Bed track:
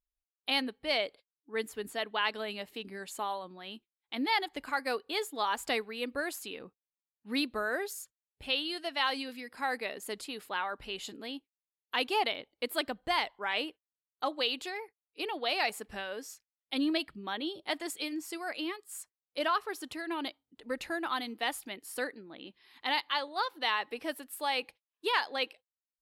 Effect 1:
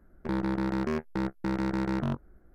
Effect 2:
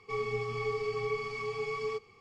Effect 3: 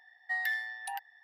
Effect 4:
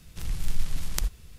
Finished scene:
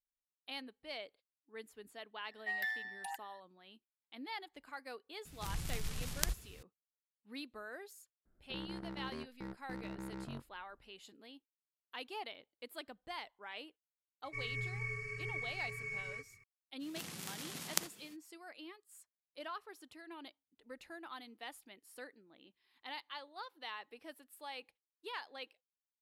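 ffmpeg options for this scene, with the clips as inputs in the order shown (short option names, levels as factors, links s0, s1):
-filter_complex "[4:a]asplit=2[s0][s1];[0:a]volume=0.178[s2];[s0]highpass=f=83:p=1[s3];[2:a]firequalizer=gain_entry='entry(120,0);entry(190,-11);entry(430,-18);entry(610,-28);entry(900,-27);entry(1600,5);entry(2300,1);entry(3300,-25);entry(5900,-6);entry(10000,5)':delay=0.05:min_phase=1[s4];[s1]highpass=f=190:w=0.5412,highpass=f=190:w=1.3066[s5];[3:a]atrim=end=1.23,asetpts=PTS-STARTPTS,volume=0.531,afade=t=in:d=0.004:c=hsin,afade=t=out:st=1.226:d=0.004:c=hsin,adelay=2170[s6];[s3]atrim=end=1.38,asetpts=PTS-STARTPTS,volume=0.708,afade=t=in:d=0.004:c=hsin,afade=t=out:st=1.376:d=0.004:c=hsin,adelay=231525S[s7];[1:a]atrim=end=2.54,asetpts=PTS-STARTPTS,volume=0.158,afade=t=in:d=0.004:c=hsin,afade=t=out:st=2.536:d=0.004:c=hsin,adelay=8250[s8];[s4]atrim=end=2.2,asetpts=PTS-STARTPTS,volume=0.891,afade=t=in:d=0.004:c=hsin,afade=t=out:st=2.196:d=0.004:c=hsin,adelay=14240[s9];[s5]atrim=end=1.38,asetpts=PTS-STARTPTS,volume=0.794,afade=t=in:d=0.05,afade=t=out:st=1.33:d=0.05,adelay=16790[s10];[s2][s6][s7][s8][s9][s10]amix=inputs=6:normalize=0"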